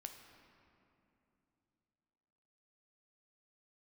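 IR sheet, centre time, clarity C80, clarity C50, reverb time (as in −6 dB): 44 ms, 7.5 dB, 6.5 dB, 3.0 s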